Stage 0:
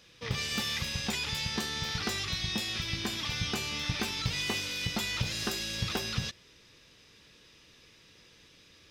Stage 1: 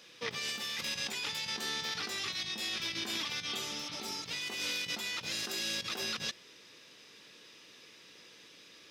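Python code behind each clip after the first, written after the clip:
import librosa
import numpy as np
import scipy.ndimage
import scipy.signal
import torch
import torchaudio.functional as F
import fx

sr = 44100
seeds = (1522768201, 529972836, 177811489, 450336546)

y = fx.over_compress(x, sr, threshold_db=-37.0, ratio=-1.0)
y = fx.spec_repair(y, sr, seeds[0], start_s=3.53, length_s=0.69, low_hz=960.0, high_hz=4800.0, source='both')
y = scipy.signal.sosfilt(scipy.signal.butter(2, 240.0, 'highpass', fs=sr, output='sos'), y)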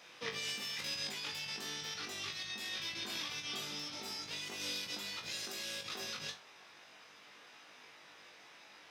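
y = fx.rider(x, sr, range_db=10, speed_s=2.0)
y = fx.dmg_noise_band(y, sr, seeds[1], low_hz=570.0, high_hz=2700.0, level_db=-56.0)
y = fx.comb_fb(y, sr, f0_hz=50.0, decay_s=0.24, harmonics='all', damping=0.0, mix_pct=100)
y = F.gain(torch.from_numpy(y), 1.0).numpy()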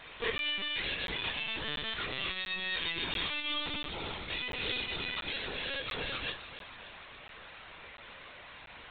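y = fx.echo_feedback(x, sr, ms=288, feedback_pct=57, wet_db=-13.0)
y = fx.lpc_vocoder(y, sr, seeds[2], excitation='pitch_kept', order=16)
y = fx.buffer_crackle(y, sr, first_s=0.38, period_s=0.69, block=512, kind='zero')
y = F.gain(torch.from_numpy(y), 8.0).numpy()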